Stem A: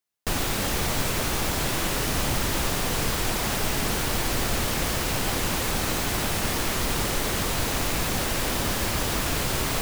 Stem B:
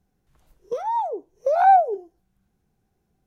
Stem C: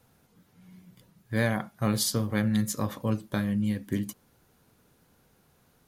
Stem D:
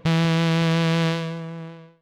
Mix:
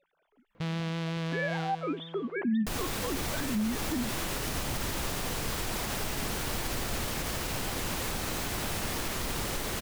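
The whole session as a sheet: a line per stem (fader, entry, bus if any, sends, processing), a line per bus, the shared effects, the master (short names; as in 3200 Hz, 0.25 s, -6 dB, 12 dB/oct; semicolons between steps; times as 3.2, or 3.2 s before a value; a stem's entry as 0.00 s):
-6.5 dB, 2.40 s, no send, dry
-10.5 dB, 0.00 s, no send, stepped resonator 4 Hz 160–890 Hz
-1.5 dB, 0.00 s, no send, sine-wave speech
-13.0 dB, 0.55 s, no send, dry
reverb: off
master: limiter -22.5 dBFS, peak gain reduction 10 dB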